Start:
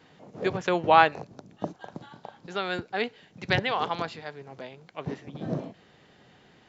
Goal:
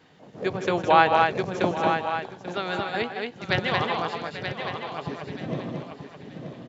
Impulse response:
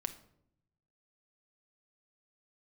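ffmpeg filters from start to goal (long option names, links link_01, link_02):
-filter_complex "[0:a]asplit=2[link_01][link_02];[link_02]aecho=0:1:930|1860|2790:0.398|0.104|0.0269[link_03];[link_01][link_03]amix=inputs=2:normalize=0,asettb=1/sr,asplit=3[link_04][link_05][link_06];[link_04]atrim=end=1.124[link_07];[link_05]atrim=start=1.12:end=1.77,asetpts=PTS-STARTPTS,afade=type=in:duration=0.004:curve=qsin,afade=type=out:start_time=0.646:duration=0.004:curve=qsin,acontrast=63[link_08];[link_06]atrim=start=1.766[link_09];[link_07][link_08]acrossfade=duration=0.004:curve1=hsin:curve2=qsin[link_10];[link_10][link_09]acrossfade=duration=0.004:curve1=qsin:curve2=hsin,asplit=2[link_11][link_12];[link_12]aecho=0:1:158|226|839:0.316|0.668|0.2[link_13];[link_11][link_13]amix=inputs=2:normalize=0"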